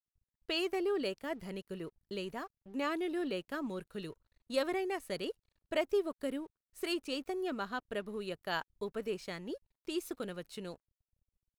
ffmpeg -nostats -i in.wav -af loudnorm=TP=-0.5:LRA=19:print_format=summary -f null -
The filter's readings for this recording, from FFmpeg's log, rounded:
Input Integrated:    -38.6 LUFS
Input True Peak:     -19.7 dBTP
Input LRA:             5.7 LU
Input Threshold:     -48.8 LUFS